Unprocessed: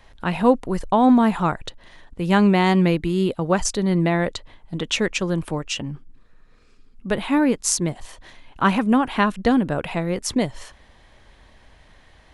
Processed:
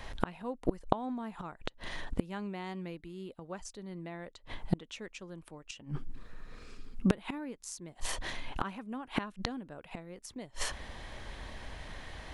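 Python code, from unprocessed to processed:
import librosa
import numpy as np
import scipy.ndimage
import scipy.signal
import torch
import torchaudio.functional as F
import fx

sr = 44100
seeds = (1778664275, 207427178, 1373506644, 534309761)

y = fx.dynamic_eq(x, sr, hz=120.0, q=1.3, threshold_db=-36.0, ratio=4.0, max_db=-4)
y = fx.gate_flip(y, sr, shuts_db=-20.0, range_db=-29)
y = F.gain(torch.from_numpy(y), 6.5).numpy()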